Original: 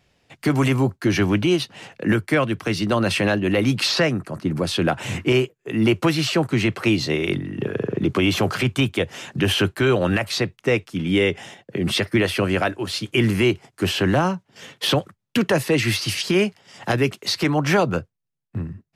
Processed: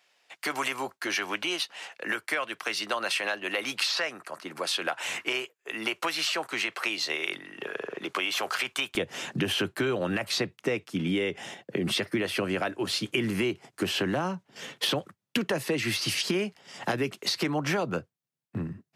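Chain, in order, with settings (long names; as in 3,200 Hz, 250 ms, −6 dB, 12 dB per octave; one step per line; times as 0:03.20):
high-pass filter 790 Hz 12 dB per octave, from 0:08.95 160 Hz
downward compressor 6 to 1, threshold −25 dBFS, peak gain reduction 11 dB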